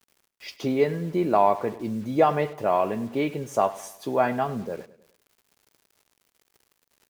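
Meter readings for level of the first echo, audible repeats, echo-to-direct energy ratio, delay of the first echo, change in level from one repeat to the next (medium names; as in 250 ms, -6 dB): -18.0 dB, 3, -17.0 dB, 102 ms, -6.5 dB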